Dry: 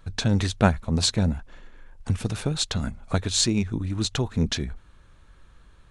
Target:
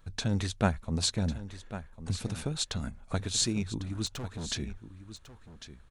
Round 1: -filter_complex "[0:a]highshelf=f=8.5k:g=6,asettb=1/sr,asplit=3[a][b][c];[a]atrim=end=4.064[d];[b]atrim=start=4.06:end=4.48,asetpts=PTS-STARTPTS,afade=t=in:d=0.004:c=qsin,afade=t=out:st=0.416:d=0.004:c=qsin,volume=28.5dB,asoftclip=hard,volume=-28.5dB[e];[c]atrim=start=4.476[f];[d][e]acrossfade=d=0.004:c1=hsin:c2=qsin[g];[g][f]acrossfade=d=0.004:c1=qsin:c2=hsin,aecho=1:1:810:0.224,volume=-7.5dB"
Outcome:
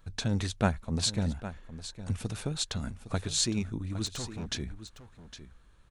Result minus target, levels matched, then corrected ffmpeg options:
echo 0.289 s early
-filter_complex "[0:a]highshelf=f=8.5k:g=6,asettb=1/sr,asplit=3[a][b][c];[a]atrim=end=4.064[d];[b]atrim=start=4.06:end=4.48,asetpts=PTS-STARTPTS,afade=t=in:d=0.004:c=qsin,afade=t=out:st=0.416:d=0.004:c=qsin,volume=28.5dB,asoftclip=hard,volume=-28.5dB[e];[c]atrim=start=4.476[f];[d][e]acrossfade=d=0.004:c1=hsin:c2=qsin[g];[g][f]acrossfade=d=0.004:c1=qsin:c2=hsin,aecho=1:1:1099:0.224,volume=-7.5dB"

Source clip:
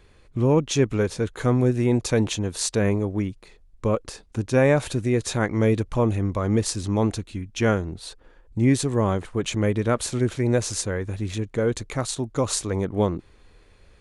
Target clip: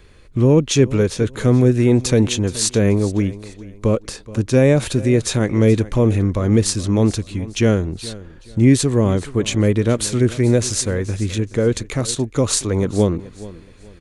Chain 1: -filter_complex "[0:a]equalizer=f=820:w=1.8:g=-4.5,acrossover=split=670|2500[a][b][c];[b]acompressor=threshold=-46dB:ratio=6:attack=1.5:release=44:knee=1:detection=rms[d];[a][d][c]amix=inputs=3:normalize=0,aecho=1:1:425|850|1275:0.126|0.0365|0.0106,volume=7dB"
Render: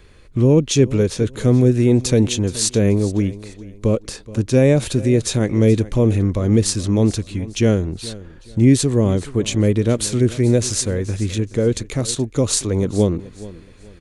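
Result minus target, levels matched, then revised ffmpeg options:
compressor: peak gain reduction +8.5 dB
-filter_complex "[0:a]equalizer=f=820:w=1.8:g=-4.5,acrossover=split=670|2500[a][b][c];[b]acompressor=threshold=-36dB:ratio=6:attack=1.5:release=44:knee=1:detection=rms[d];[a][d][c]amix=inputs=3:normalize=0,aecho=1:1:425|850|1275:0.126|0.0365|0.0106,volume=7dB"

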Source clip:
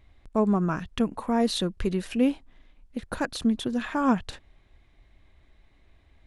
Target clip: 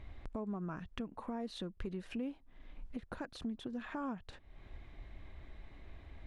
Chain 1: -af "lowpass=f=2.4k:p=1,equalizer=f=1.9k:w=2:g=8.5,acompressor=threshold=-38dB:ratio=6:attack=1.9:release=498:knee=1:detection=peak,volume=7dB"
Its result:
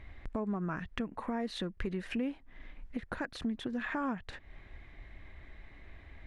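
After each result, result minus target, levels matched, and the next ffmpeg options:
compressor: peak gain reduction -5 dB; 2000 Hz band +4.5 dB
-af "lowpass=f=2.4k:p=1,equalizer=f=1.9k:w=2:g=8.5,acompressor=threshold=-44.5dB:ratio=6:attack=1.9:release=498:knee=1:detection=peak,volume=7dB"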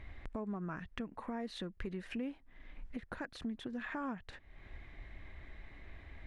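2000 Hz band +5.5 dB
-af "lowpass=f=2.4k:p=1,acompressor=threshold=-44.5dB:ratio=6:attack=1.9:release=498:knee=1:detection=peak,volume=7dB"

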